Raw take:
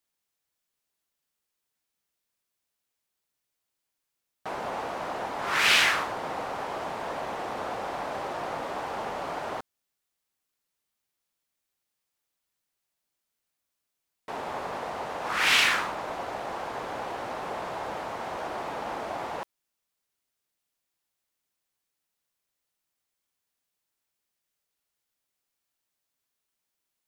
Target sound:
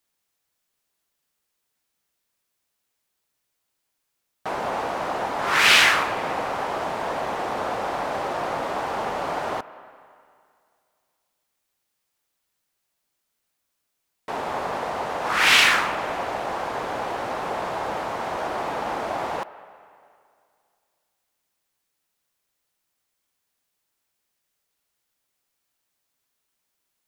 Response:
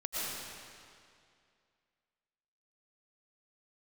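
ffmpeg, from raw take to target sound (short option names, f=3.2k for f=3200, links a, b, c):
-filter_complex "[0:a]asplit=2[a][b];[1:a]atrim=start_sample=2205,lowpass=2.2k,lowshelf=f=370:g=-12[c];[b][c]afir=irnorm=-1:irlink=0,volume=-16.5dB[d];[a][d]amix=inputs=2:normalize=0,volume=5.5dB"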